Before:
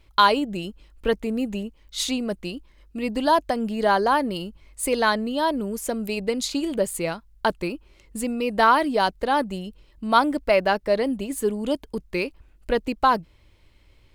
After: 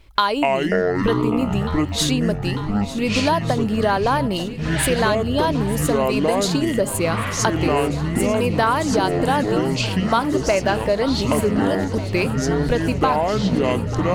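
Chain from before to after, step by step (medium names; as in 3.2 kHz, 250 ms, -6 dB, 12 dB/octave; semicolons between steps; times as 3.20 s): ever faster or slower copies 155 ms, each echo -7 st, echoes 3; compression, threshold -21 dBFS, peak gain reduction 10 dB; shuffle delay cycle 1491 ms, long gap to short 1.5:1, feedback 69%, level -15.5 dB; trim +6 dB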